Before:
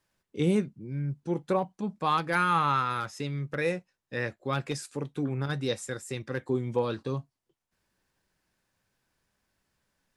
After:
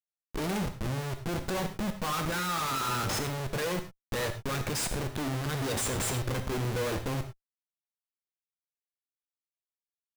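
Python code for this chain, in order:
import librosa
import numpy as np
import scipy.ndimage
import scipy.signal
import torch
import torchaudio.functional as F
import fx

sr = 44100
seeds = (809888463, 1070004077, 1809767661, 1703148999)

y = fx.high_shelf(x, sr, hz=5500.0, db=11.0)
y = fx.schmitt(y, sr, flips_db=-40.0)
y = fx.rev_gated(y, sr, seeds[0], gate_ms=130, shape='flat', drr_db=7.0)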